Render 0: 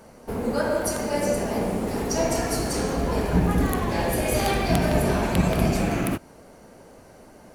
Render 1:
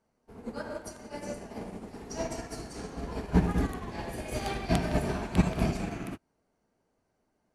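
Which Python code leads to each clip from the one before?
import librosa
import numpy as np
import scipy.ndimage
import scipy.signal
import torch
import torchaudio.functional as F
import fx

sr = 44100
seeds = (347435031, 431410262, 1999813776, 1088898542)

y = scipy.signal.sosfilt(scipy.signal.butter(2, 8900.0, 'lowpass', fs=sr, output='sos'), x)
y = fx.peak_eq(y, sr, hz=540.0, db=-6.0, octaves=0.23)
y = fx.upward_expand(y, sr, threshold_db=-34.0, expansion=2.5)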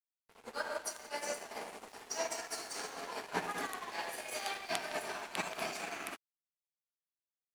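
y = scipy.signal.sosfilt(scipy.signal.bessel(2, 1000.0, 'highpass', norm='mag', fs=sr, output='sos'), x)
y = fx.rider(y, sr, range_db=4, speed_s=0.5)
y = np.sign(y) * np.maximum(np.abs(y) - 10.0 ** (-56.0 / 20.0), 0.0)
y = F.gain(torch.from_numpy(y), 4.0).numpy()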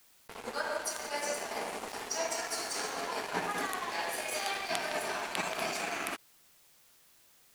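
y = fx.env_flatten(x, sr, amount_pct=50)
y = F.gain(torch.from_numpy(y), 1.0).numpy()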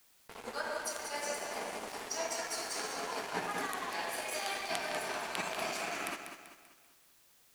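y = fx.echo_feedback(x, sr, ms=194, feedback_pct=43, wet_db=-8.5)
y = F.gain(torch.from_numpy(y), -3.0).numpy()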